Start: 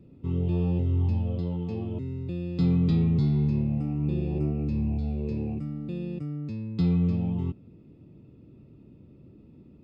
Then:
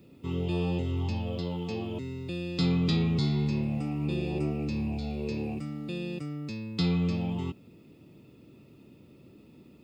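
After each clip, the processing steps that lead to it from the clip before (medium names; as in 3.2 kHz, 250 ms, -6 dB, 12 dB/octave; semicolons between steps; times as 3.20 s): tilt EQ +3.5 dB/octave; trim +5.5 dB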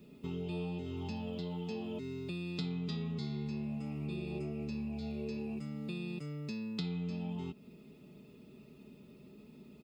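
comb 4.8 ms, depth 73%; compression 4:1, threshold -34 dBFS, peak gain reduction 12.5 dB; trim -3 dB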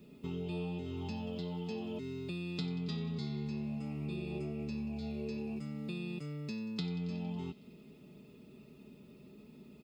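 feedback echo behind a high-pass 92 ms, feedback 75%, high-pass 2.1 kHz, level -16.5 dB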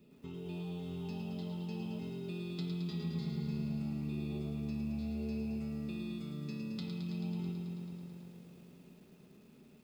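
on a send at -14 dB: reverberation RT60 2.6 s, pre-delay 8 ms; on the sum: bit-crushed delay 109 ms, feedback 80%, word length 10-bit, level -5.5 dB; trim -6 dB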